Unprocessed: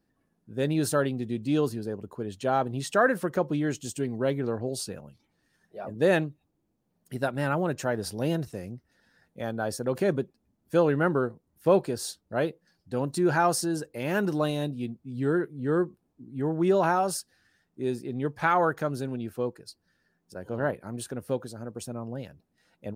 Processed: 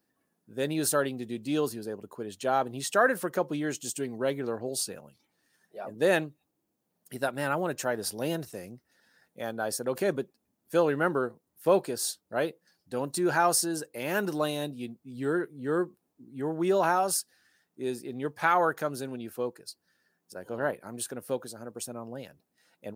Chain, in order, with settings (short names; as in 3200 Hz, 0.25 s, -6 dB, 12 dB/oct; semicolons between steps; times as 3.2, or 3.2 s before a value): HPF 340 Hz 6 dB/oct; high shelf 8100 Hz +9 dB